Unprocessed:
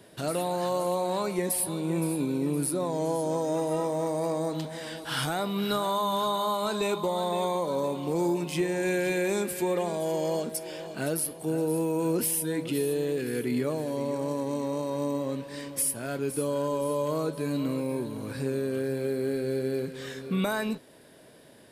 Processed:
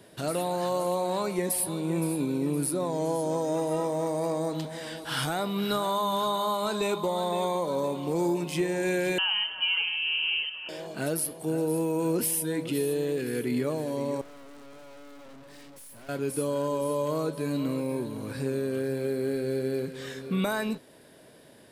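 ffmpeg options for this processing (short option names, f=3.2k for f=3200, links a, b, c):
-filter_complex "[0:a]asettb=1/sr,asplit=3[a][b][c];[a]atrim=end=9.184[d];[b]atrim=start=9.18:end=10.69,asetpts=PTS-STARTPTS,afade=t=in:d=0.004:c=qsin,afade=t=out:st=1.506:d=0.004:c=qsin,lowpass=f=2.8k:t=q:w=0.5098,lowpass=f=2.8k:t=q:w=0.6013,lowpass=f=2.8k:t=q:w=0.9,lowpass=f=2.8k:t=q:w=2.563,afreqshift=-3300[e];[c]atrim=start=10.686[f];[d][e]acrossfade=d=0.004:c1=hsin:c2=qsin[g];[g][f]acrossfade=d=0.004:c1=qsin:c2=hsin,asettb=1/sr,asplit=3[h][i][j];[h]atrim=end=14.214[k];[i]atrim=start=14.21:end=16.09,asetpts=PTS-STARTPTS,afade=t=in:d=0.004:c=qsin,afade=t=out:st=1.876:d=0.004:c=qsin,aeval=exprs='(tanh(251*val(0)+0.65)-tanh(0.65))/251':c=same[l];[j]atrim=start=16.086[m];[k][l]acrossfade=d=0.004:c1=hsin:c2=qsin[n];[n][m]acrossfade=d=0.004:c1=qsin:c2=hsin"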